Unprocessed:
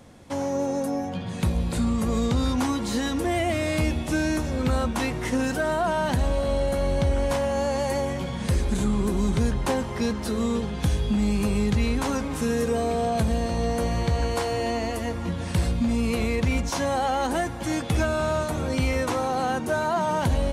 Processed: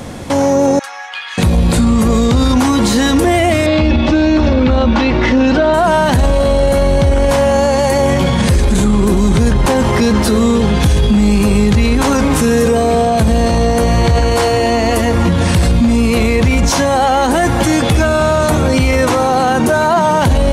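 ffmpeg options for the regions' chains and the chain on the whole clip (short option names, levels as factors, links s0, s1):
-filter_complex "[0:a]asettb=1/sr,asplit=3[s0][s1][s2];[s0]atrim=end=0.794[s3];[s1]atrim=start=0.79:end=1.38,asetpts=PTS-STARTPTS,afade=t=in:d=0.004:c=qsin,afade=t=out:st=0.586:d=0.004:c=qsin,highpass=f=1400:w=0.5412,highpass=f=1400:w=1.3066,aecho=1:1:2.4:0.62,atrim=end_sample=26019,adynamicsmooth=sensitivity=3.5:basefreq=2800[s4];[s2]atrim=start=1.376[s5];[s3][s4]acrossfade=d=0.004:c1=hsin:c2=qsin[s6];[s6][s5]acrossfade=d=0.004:c1=qsin:c2=hsin,asettb=1/sr,asplit=3[s7][s8][s9];[s7]atrim=end=3.664[s10];[s8]atrim=start=3.66:end=5.74,asetpts=PTS-STARTPTS,afade=t=in:d=0.004:c=qsin,afade=t=out:st=2.076:d=0.004:c=qsin,lowpass=f=4600:w=0.5412,lowpass=f=4600:w=1.3066,aecho=1:1:3.5:0.51,atrim=end_sample=91728[s11];[s9]atrim=start=5.736[s12];[s10][s11]acrossfade=d=0.004:c1=hsin:c2=qsin[s13];[s13][s12]acrossfade=d=0.004:c1=qsin:c2=hsin,acontrast=32,alimiter=level_in=10.6:limit=0.891:release=50:level=0:latency=1,volume=0.668"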